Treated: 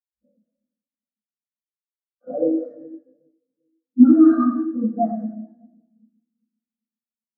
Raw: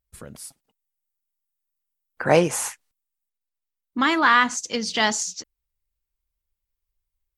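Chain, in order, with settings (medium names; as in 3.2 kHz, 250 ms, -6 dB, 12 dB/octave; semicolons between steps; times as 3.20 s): bit-reversed sample order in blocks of 16 samples; level-controlled noise filter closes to 560 Hz, open at -16.5 dBFS; peak limiter -14.5 dBFS, peak gain reduction 11.5 dB; static phaser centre 620 Hz, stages 8; 0.44–2.47 s: frequency shift -22 Hz; one-sided clip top -25 dBFS; two-band feedback delay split 460 Hz, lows 394 ms, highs 107 ms, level -8 dB; reverberation RT60 2.2 s, pre-delay 12 ms, DRR -12.5 dB; spectral contrast expander 2.5:1; trim -6.5 dB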